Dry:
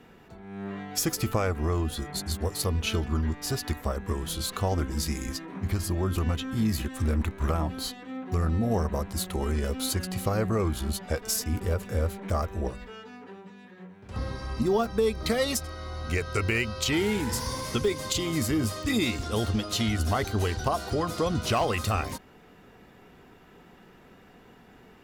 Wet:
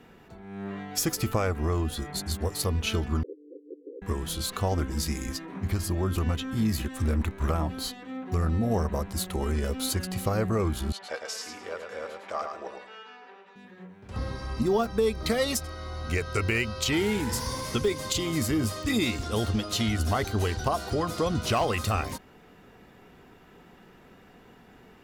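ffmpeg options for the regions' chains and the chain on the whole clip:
-filter_complex "[0:a]asettb=1/sr,asplit=3[s0][s1][s2];[s0]atrim=end=3.234[s3];[s1]atrim=start=3.23:end=4.02,asetpts=PTS-STARTPTS,afade=t=in:d=0.004:c=qsin,afade=t=out:st=0.786:d=0.004:c=qsin,aeval=exprs='(mod(12.6*val(0)+1,2)-1)/12.6':c=same,asuperpass=centerf=380:order=20:qfactor=1.6,lowshelf=f=400:g=-7[s4];[s2]atrim=start=4.016[s5];[s3][s4]acrossfade=d=0.004:c1=hsin:c2=qsin[s6];[s6][s5]acrossfade=d=0.004:c1=qsin:c2=hsin,asettb=1/sr,asplit=3[s7][s8][s9];[s7]atrim=end=10.924[s10];[s8]atrim=start=10.92:end=13.56,asetpts=PTS-STARTPTS,afade=t=in:d=0.004:c=qsin,afade=t=out:st=2.636:d=0.004:c=qsin,highpass=610,lowpass=4600,aecho=1:1:107|214|321:0.531|0.133|0.0332,atrim=end_sample=116424[s11];[s9]atrim=start=13.556[s12];[s10][s11]acrossfade=d=0.004:c1=hsin:c2=qsin[s13];[s13][s12]acrossfade=d=0.004:c1=qsin:c2=hsin"

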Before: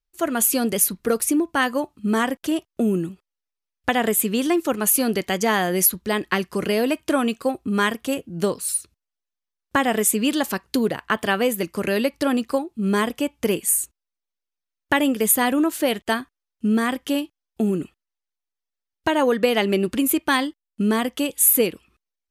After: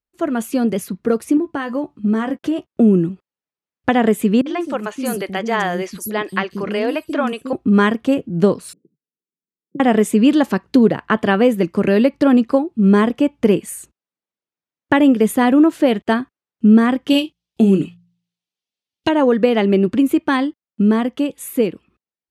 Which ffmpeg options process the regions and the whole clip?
-filter_complex "[0:a]asettb=1/sr,asplit=3[s0][s1][s2];[s0]atrim=end=1.374[s3];[s1]atrim=start=1.37:end=2.72,asetpts=PTS-STARTPTS,afade=t=in:d=0.004:c=qsin,afade=t=out:st=1.346:d=0.004:c=qsin,asplit=2[s4][s5];[s5]adelay=14,volume=0.376[s6];[s4][s6]amix=inputs=2:normalize=0,atrim=end_sample=59535,acompressor=threshold=0.0708:ratio=3:attack=3.2:release=140:knee=1:detection=peak[s7];[s2]atrim=start=2.716[s8];[s3][s7]acrossfade=d=0.004:c1=hsin:c2=qsin[s9];[s9][s8]acrossfade=d=0.004:c1=qsin:c2=hsin,asettb=1/sr,asplit=3[s10][s11][s12];[s10]atrim=end=4.414[s13];[s11]atrim=start=4.41:end=7.53,asetpts=PTS-STARTPTS,afade=t=in:d=0.004:c=qsin,afade=t=out:st=3.116:d=0.004:c=qsin,equalizer=f=140:w=0.31:g=-9,acrossover=split=320|5900[s14][s15][s16];[s15]adelay=50[s17];[s16]adelay=190[s18];[s14][s17][s18]amix=inputs=3:normalize=0,atrim=end_sample=137592[s19];[s12]atrim=start=7.526[s20];[s13][s19]acrossfade=d=0.004:c1=hsin:c2=qsin[s21];[s21][s20]acrossfade=d=0.004:c1=qsin:c2=hsin,asettb=1/sr,asplit=3[s22][s23][s24];[s22]atrim=end=8.734[s25];[s23]atrim=start=8.73:end=9.8,asetpts=PTS-STARTPTS,afade=t=in:d=0.004:c=qsin,afade=t=out:st=1.066:d=0.004:c=qsin,aeval=exprs='if(lt(val(0),0),0.708*val(0),val(0))':c=same,acompressor=threshold=0.0158:ratio=2.5:attack=3.2:release=140:knee=1:detection=peak,asuperpass=centerf=260:order=12:qfactor=0.78[s26];[s24]atrim=start=9.796[s27];[s25][s26]acrossfade=d=0.004:c1=hsin:c2=qsin[s28];[s28][s27]acrossfade=d=0.004:c1=qsin:c2=hsin,asettb=1/sr,asplit=3[s29][s30][s31];[s29]atrim=end=17.104[s32];[s30]atrim=start=17.1:end=19.09,asetpts=PTS-STARTPTS,afade=t=in:d=0.004:c=qsin,afade=t=out:st=1.986:d=0.004:c=qsin,highshelf=f=2200:t=q:w=1.5:g=11,asplit=2[s33][s34];[s34]adelay=26,volume=0.316[s35];[s33][s35]amix=inputs=2:normalize=0,atrim=end_sample=87759,bandreject=f=57.81:t=h:w=4,bandreject=f=115.62:t=h:w=4,bandreject=f=173.43:t=h:w=4[s36];[s31]atrim=start=19.086[s37];[s32][s36]acrossfade=d=0.004:c1=hsin:c2=qsin[s38];[s38][s37]acrossfade=d=0.004:c1=qsin:c2=hsin,highpass=180,aemphasis=mode=reproduction:type=riaa,dynaudnorm=f=200:g=17:m=2.11"

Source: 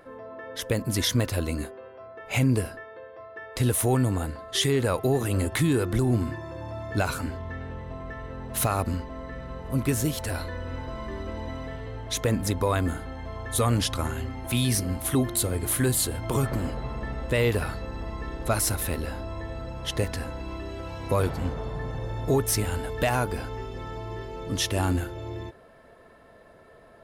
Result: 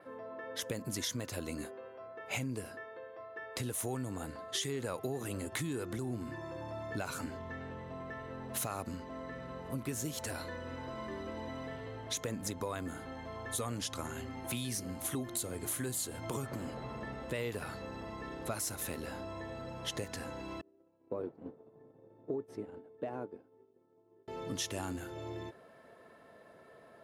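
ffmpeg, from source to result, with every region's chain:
-filter_complex "[0:a]asettb=1/sr,asplit=3[s0][s1][s2];[s0]atrim=end=20.614[s3];[s1]atrim=start=20.61:end=24.28,asetpts=PTS-STARTPTS,afade=t=in:d=0.004:c=qsin,afade=t=out:st=3.666:d=0.004:c=qsin,agate=range=0.0224:threshold=0.0708:ratio=3:release=100:detection=peak,bandpass=f=350:t=q:w=1.6[s4];[s2]atrim=start=24.276[s5];[s3][s4]acrossfade=d=0.004:c1=hsin:c2=qsin[s6];[s6][s5]acrossfade=d=0.004:c1=qsin:c2=hsin,adynamicequalizer=threshold=0.00398:dfrequency=6700:dqfactor=2.7:tfrequency=6700:tqfactor=2.7:attack=5:release=100:ratio=0.375:range=3.5:mode=boostabove:tftype=bell,acompressor=threshold=0.0355:ratio=6,highpass=130,volume=0.596"

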